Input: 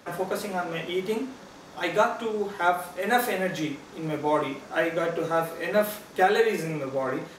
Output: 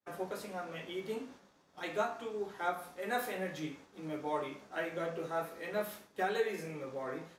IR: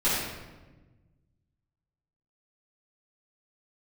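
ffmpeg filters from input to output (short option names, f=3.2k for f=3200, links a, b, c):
-af "flanger=delay=9.7:depth=8.5:regen=58:speed=0.49:shape=sinusoidal,agate=range=-33dB:threshold=-43dB:ratio=3:detection=peak,volume=-7.5dB"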